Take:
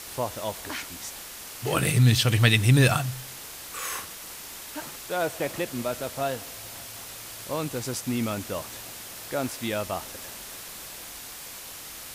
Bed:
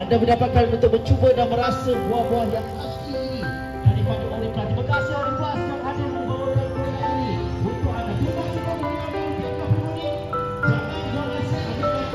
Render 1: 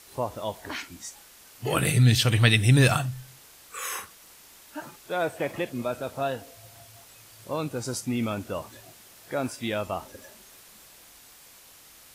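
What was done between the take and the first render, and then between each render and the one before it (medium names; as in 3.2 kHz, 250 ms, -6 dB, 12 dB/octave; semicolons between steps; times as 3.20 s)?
noise print and reduce 11 dB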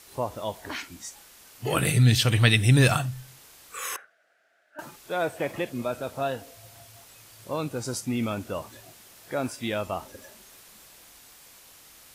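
3.96–4.79 s: two resonant band-passes 1 kHz, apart 1.2 oct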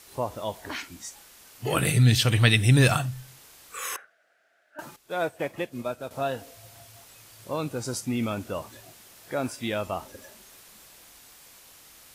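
4.96–6.11 s: upward expansion, over -47 dBFS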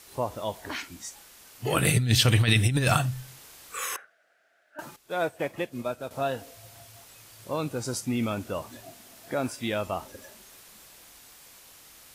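1.84–3.85 s: compressor with a negative ratio -20 dBFS, ratio -0.5; 8.69–9.34 s: small resonant body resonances 250/670 Hz, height 10 dB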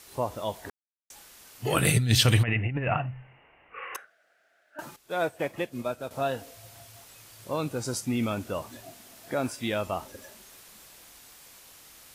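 0.70–1.10 s: mute; 2.43–3.95 s: rippled Chebyshev low-pass 2.9 kHz, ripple 6 dB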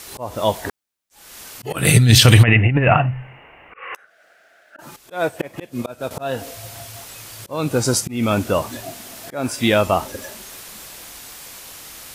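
slow attack 285 ms; loudness maximiser +13.5 dB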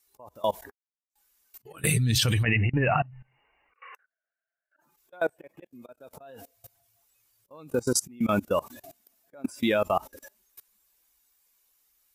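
expander on every frequency bin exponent 1.5; level held to a coarse grid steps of 23 dB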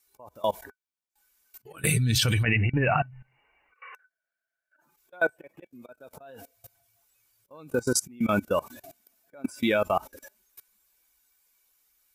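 small resonant body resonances 1.5/2.3 kHz, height 12 dB, ringing for 95 ms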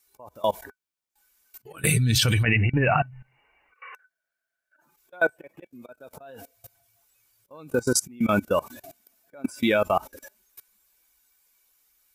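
trim +2.5 dB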